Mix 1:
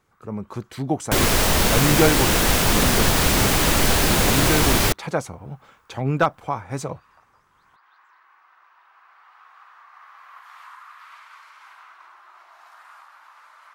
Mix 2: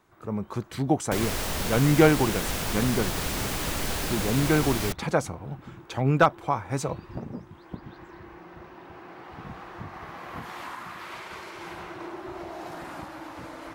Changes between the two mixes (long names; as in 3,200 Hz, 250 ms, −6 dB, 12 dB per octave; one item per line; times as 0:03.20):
first sound: remove four-pole ladder high-pass 1,000 Hz, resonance 50%
second sound −11.5 dB